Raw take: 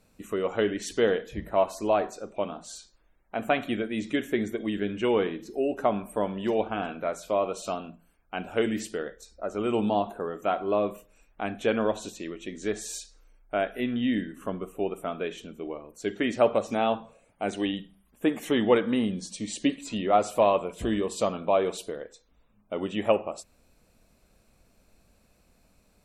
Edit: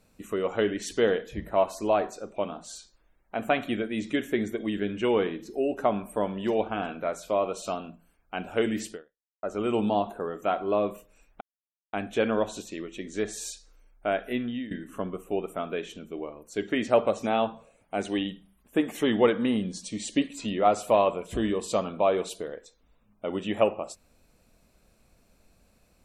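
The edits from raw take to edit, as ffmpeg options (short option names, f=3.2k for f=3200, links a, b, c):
-filter_complex "[0:a]asplit=4[a][b][c][d];[a]atrim=end=9.43,asetpts=PTS-STARTPTS,afade=t=out:st=8.92:d=0.51:c=exp[e];[b]atrim=start=9.43:end=11.41,asetpts=PTS-STARTPTS,afade=t=in:d=0.004:c=hsin,afade=t=out:st=1.976:d=0.004:c=hsin,apad=pad_dur=0.52[f];[c]atrim=start=11.41:end=14.19,asetpts=PTS-STARTPTS,afade=t=in:d=0.004:c=hsin,afade=t=out:st=2.42:d=0.36:silence=0.133352[g];[d]atrim=start=14.19,asetpts=PTS-STARTPTS,afade=t=in:d=0.004:c=hsin:silence=0.133352[h];[e][f][g][h]concat=n=4:v=0:a=1"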